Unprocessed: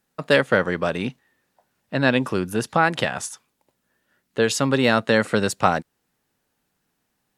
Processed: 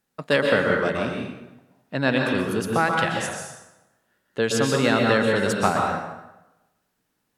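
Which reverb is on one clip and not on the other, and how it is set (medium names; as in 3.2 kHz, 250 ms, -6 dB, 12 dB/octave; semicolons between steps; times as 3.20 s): plate-style reverb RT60 1 s, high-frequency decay 0.75×, pre-delay 110 ms, DRR 0.5 dB; trim -3.5 dB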